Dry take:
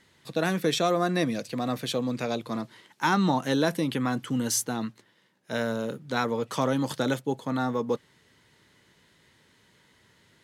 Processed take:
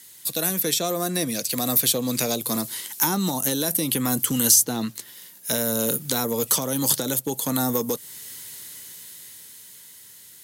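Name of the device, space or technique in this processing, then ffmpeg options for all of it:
FM broadcast chain: -filter_complex "[0:a]asettb=1/sr,asplit=3[a][b][c];[a]atrim=end=0.604[d];[b]atrim=start=0.6:end=1.51,asetpts=PTS-STARTPTS,afade=t=in:d=0.004:c=qsin,afade=t=out:st=0.906:d=0.004:c=qsin,highshelf=f=8.9k:g=-9[e];[c]atrim=start=1.506[f];[d][e]acrossfade=d=0.004:c1=hsin:c2=qsin[g];[g][f]acrossfade=d=0.004:c1=qsin:c2=hsin,highpass=61,dynaudnorm=f=310:g=13:m=12dB,acrossover=split=800|6600[h][i][j];[h]acompressor=threshold=-19dB:ratio=4[k];[i]acompressor=threshold=-36dB:ratio=4[l];[j]acompressor=threshold=-51dB:ratio=4[m];[k][l][m]amix=inputs=3:normalize=0,aemphasis=mode=production:type=75fm,alimiter=limit=-15dB:level=0:latency=1:release=410,asoftclip=type=hard:threshold=-17dB,lowpass=f=15k:w=0.5412,lowpass=f=15k:w=1.3066,aemphasis=mode=production:type=75fm"

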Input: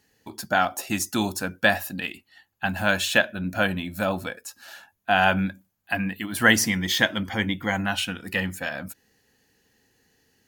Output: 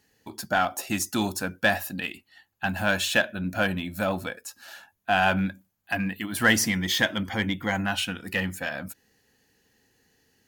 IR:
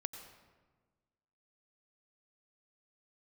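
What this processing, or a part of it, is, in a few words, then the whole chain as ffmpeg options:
parallel distortion: -filter_complex "[0:a]asplit=2[a][b];[b]asoftclip=type=hard:threshold=-20.5dB,volume=-5.5dB[c];[a][c]amix=inputs=2:normalize=0,volume=-4.5dB"

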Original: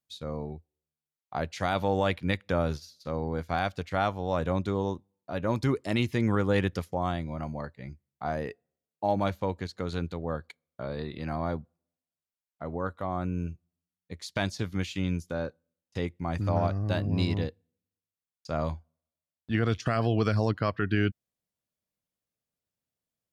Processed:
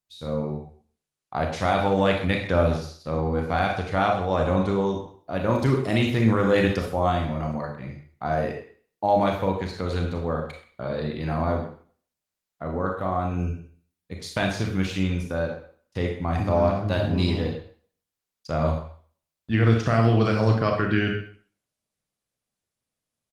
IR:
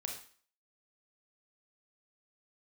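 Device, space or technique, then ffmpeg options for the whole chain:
speakerphone in a meeting room: -filter_complex "[1:a]atrim=start_sample=2205[a];[0:a][a]afir=irnorm=-1:irlink=0,asplit=2[b][c];[c]adelay=130,highpass=300,lowpass=3.4k,asoftclip=type=hard:threshold=-23dB,volume=-14dB[d];[b][d]amix=inputs=2:normalize=0,dynaudnorm=f=140:g=3:m=7dB" -ar 48000 -c:a libopus -b:a 24k

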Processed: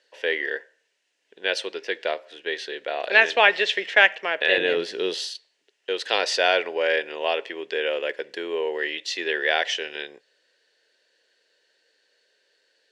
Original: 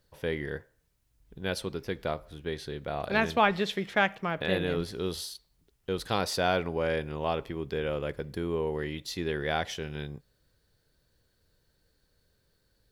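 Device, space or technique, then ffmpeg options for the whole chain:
phone speaker on a table: -filter_complex "[0:a]highpass=f=420:w=0.5412,highpass=f=420:w=1.3066,equalizer=f=810:t=q:w=4:g=-4,equalizer=f=1.2k:t=q:w=4:g=-10,equalizer=f=1.8k:t=q:w=4:g=8,equalizer=f=2.8k:t=q:w=4:g=9,lowpass=f=7.4k:w=0.5412,lowpass=f=7.4k:w=1.3066,asettb=1/sr,asplit=3[a][b][c];[a]atrim=end=4.584[d];[b]atrim=start=4.58:end=5.28,asetpts=PTS-STARTPTS,afade=t=in:d=0.004:c=qsin,afade=t=out:st=0.696:d=0.004:c=qsin,equalizer=f=98:t=o:w=2.6:g=15[e];[c]atrim=start=5.276[f];[d][e]acrossfade=d=0.004:c1=hsin:c2=qsin[g];[g][f]acrossfade=d=0.004:c1=qsin:c2=hsin,volume=7.5dB"

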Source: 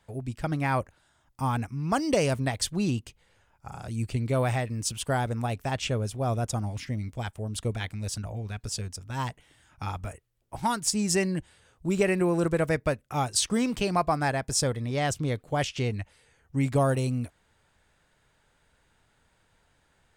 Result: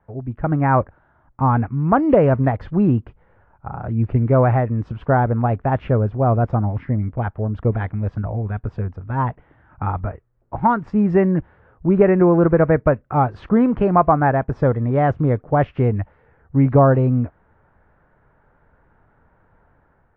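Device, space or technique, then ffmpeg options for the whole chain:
action camera in a waterproof case: -af "lowpass=f=1.5k:w=0.5412,lowpass=f=1.5k:w=1.3066,dynaudnorm=f=120:g=7:m=6dB,volume=5dB" -ar 24000 -c:a aac -b:a 48k

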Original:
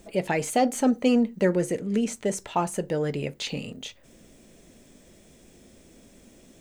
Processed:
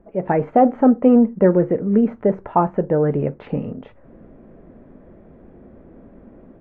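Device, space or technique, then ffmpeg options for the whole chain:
action camera in a waterproof case: -af "lowpass=f=1.4k:w=0.5412,lowpass=f=1.4k:w=1.3066,dynaudnorm=f=160:g=3:m=9.5dB" -ar 24000 -c:a aac -b:a 48k

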